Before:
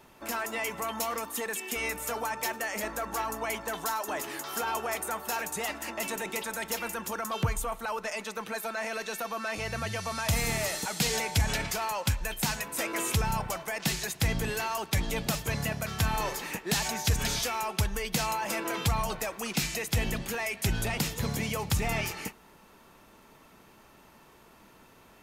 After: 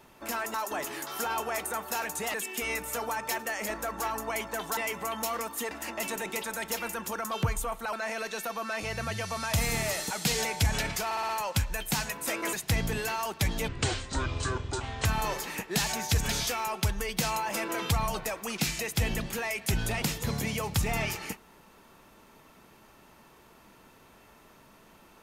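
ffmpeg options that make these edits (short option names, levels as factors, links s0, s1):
-filter_complex "[0:a]asplit=13[s0][s1][s2][s3][s4][s5][s6][s7][s8][s9][s10][s11][s12];[s0]atrim=end=0.542[s13];[s1]atrim=start=3.908:end=5.712[s14];[s2]atrim=start=1.478:end=3.912[s15];[s3]atrim=start=0.538:end=1.482[s16];[s4]atrim=start=5.708:end=7.932[s17];[s5]atrim=start=8.678:end=11.862[s18];[s6]atrim=start=11.798:end=11.862[s19];[s7]atrim=start=11.798:end=11.862[s20];[s8]atrim=start=11.798:end=11.862[s21];[s9]atrim=start=11.798:end=13.042[s22];[s10]atrim=start=14.048:end=15.204[s23];[s11]atrim=start=15.2:end=16.01,asetpts=PTS-STARTPTS,asetrate=26019,aresample=44100,atrim=end_sample=60544,asetpts=PTS-STARTPTS[s24];[s12]atrim=start=16.006[s25];[s13][s14]acrossfade=d=0.004:c1=hsin:c2=hsin[s26];[s26][s15]acrossfade=d=0.004:c1=hsin:c2=hsin[s27];[s27][s16]acrossfade=d=0.004:c1=hsin:c2=hsin[s28];[s28][s17]acrossfade=d=0.004:c1=hsin:c2=hsin[s29];[s29][s18]acrossfade=d=0.004:c1=hsin:c2=hsin[s30];[s30][s19]acrossfade=d=0.004:c1=hsin:c2=hsin[s31];[s31][s20]acrossfade=d=0.004:c1=hsin:c2=hsin[s32];[s32][s21]acrossfade=d=0.004:c1=hsin:c2=hsin[s33];[s33][s22]acrossfade=d=0.004:c1=hsin:c2=hsin[s34];[s34][s23]acrossfade=d=0.004:c1=hsin:c2=hsin[s35];[s35][s24]acrossfade=d=0.004:c1=hsin:c2=hsin[s36];[s36][s25]acrossfade=d=0.004:c1=hsin:c2=hsin"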